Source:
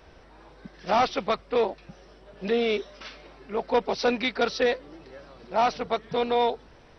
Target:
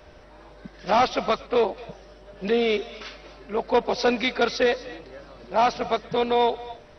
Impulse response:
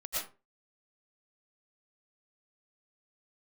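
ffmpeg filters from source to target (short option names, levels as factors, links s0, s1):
-filter_complex "[0:a]aeval=exprs='val(0)+0.00141*sin(2*PI*600*n/s)':c=same,asplit=2[s0][s1];[s1]highshelf=f=4200:g=9[s2];[1:a]atrim=start_sample=2205,adelay=118[s3];[s2][s3]afir=irnorm=-1:irlink=0,volume=0.0891[s4];[s0][s4]amix=inputs=2:normalize=0,volume=1.33"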